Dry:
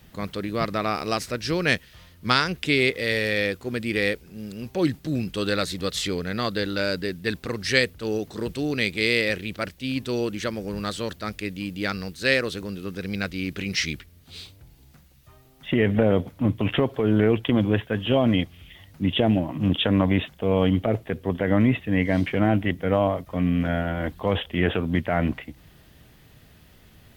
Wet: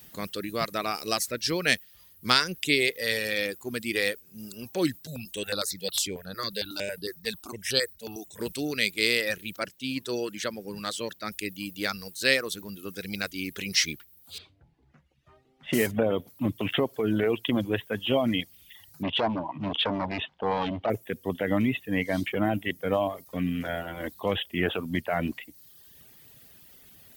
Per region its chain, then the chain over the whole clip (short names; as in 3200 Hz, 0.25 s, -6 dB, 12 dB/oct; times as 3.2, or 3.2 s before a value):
5.07–8.4 bell 270 Hz -5 dB 1 oct + step phaser 11 Hz 320–7100 Hz
9.59–11.32 HPF 95 Hz + high shelf 7800 Hz -8 dB
14.38–15.93 block floating point 5-bit + low-pass opened by the level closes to 2000 Hz, open at -19.5 dBFS + doubler 13 ms -11 dB
19.03–20.9 overloaded stage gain 21.5 dB + LPF 4200 Hz 24 dB/oct + bell 910 Hz +11.5 dB 0.75 oct
whole clip: RIAA curve recording; reverb removal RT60 1 s; low shelf 460 Hz +9.5 dB; gain -4.5 dB